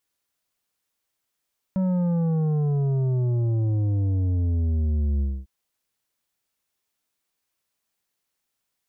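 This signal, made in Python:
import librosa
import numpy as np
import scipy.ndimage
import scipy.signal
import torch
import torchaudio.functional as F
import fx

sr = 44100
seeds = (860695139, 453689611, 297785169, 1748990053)

y = fx.sub_drop(sr, level_db=-21, start_hz=190.0, length_s=3.7, drive_db=8.5, fade_s=0.25, end_hz=65.0)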